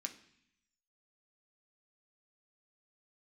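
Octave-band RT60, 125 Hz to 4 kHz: 1.0, 0.95, 0.60, 0.70, 0.95, 0.90 seconds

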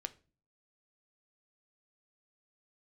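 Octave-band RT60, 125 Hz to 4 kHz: 0.65, 0.60, 0.40, 0.30, 0.30, 0.30 seconds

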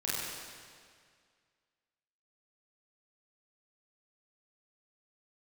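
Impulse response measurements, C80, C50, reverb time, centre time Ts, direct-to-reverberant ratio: −1.5 dB, −3.5 dB, 2.0 s, 146 ms, −9.0 dB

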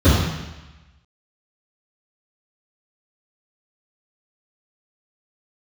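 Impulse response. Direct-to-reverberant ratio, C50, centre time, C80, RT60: −16.0 dB, −0.5 dB, 81 ms, 2.5 dB, 1.1 s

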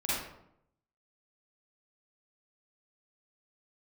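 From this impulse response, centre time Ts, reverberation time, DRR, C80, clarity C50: 78 ms, 0.75 s, −10.0 dB, 2.5 dB, −4.0 dB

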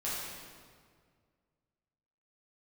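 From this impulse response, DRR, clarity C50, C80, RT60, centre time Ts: −9.5 dB, −2.0 dB, 0.5 dB, 1.9 s, 115 ms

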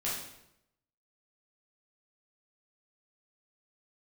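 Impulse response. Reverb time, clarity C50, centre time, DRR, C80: 0.80 s, 2.0 dB, 53 ms, −7.5 dB, 5.5 dB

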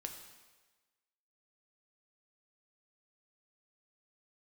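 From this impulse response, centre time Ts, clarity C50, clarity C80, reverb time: 29 ms, 7.0 dB, 8.5 dB, 1.3 s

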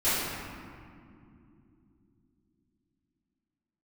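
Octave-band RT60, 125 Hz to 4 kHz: 4.3, 4.6, 3.3, 2.2, 1.9, 1.2 seconds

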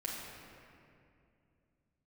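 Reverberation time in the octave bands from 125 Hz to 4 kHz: 3.7, 3.3, 2.8, 2.3, 2.2, 1.6 seconds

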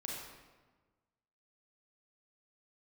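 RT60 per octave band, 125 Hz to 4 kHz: 1.6, 1.6, 1.4, 1.3, 1.1, 0.90 seconds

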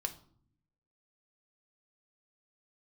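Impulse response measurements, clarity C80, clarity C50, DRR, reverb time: 19.0 dB, 14.5 dB, 5.5 dB, 0.55 s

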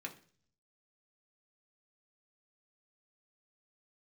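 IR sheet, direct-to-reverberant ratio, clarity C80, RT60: 0.5 dB, 18.5 dB, 0.45 s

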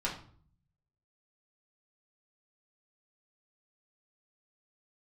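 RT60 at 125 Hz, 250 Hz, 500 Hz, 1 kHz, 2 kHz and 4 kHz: 1.1, 0.80, 0.50, 0.50, 0.40, 0.35 seconds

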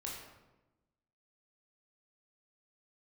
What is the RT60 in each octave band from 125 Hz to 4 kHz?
1.3, 1.4, 1.1, 0.95, 0.80, 0.65 seconds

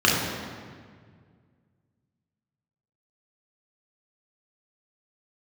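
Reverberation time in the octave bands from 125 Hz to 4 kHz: 2.8, 2.3, 2.0, 1.7, 1.6, 1.3 seconds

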